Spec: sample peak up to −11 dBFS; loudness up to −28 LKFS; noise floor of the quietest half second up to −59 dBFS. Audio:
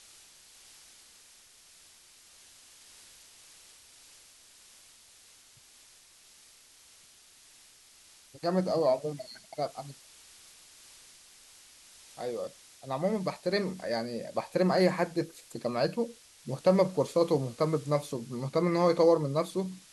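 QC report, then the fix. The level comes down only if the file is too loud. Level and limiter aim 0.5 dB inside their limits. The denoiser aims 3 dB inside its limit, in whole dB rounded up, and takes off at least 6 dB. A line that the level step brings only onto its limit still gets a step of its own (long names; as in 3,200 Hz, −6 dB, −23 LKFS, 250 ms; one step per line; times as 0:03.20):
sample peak −10.5 dBFS: out of spec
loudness −30.0 LKFS: in spec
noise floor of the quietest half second −58 dBFS: out of spec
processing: broadband denoise 6 dB, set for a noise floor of −58 dBFS
brickwall limiter −11.5 dBFS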